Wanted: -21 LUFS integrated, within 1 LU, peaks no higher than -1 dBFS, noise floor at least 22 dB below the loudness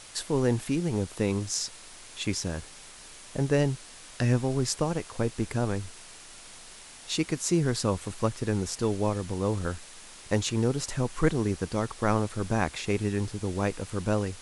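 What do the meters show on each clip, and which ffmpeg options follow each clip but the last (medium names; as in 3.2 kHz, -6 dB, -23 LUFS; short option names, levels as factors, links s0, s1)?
noise floor -48 dBFS; noise floor target -51 dBFS; loudness -29.0 LUFS; peak level -9.0 dBFS; loudness target -21.0 LUFS
-> -af "afftdn=nr=6:nf=-48"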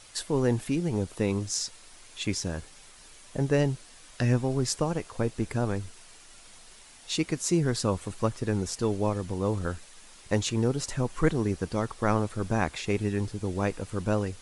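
noise floor -52 dBFS; loudness -29.0 LUFS; peak level -9.5 dBFS; loudness target -21.0 LUFS
-> -af "volume=2.51"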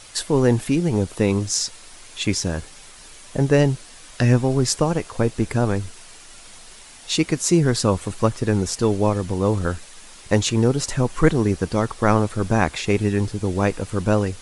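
loudness -21.0 LUFS; peak level -1.5 dBFS; noise floor -44 dBFS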